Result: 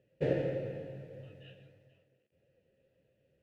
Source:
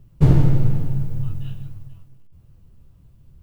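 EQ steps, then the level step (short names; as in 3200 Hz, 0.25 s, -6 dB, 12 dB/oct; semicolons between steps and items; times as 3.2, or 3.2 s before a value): vowel filter e; low shelf 83 Hz -9 dB; +6.5 dB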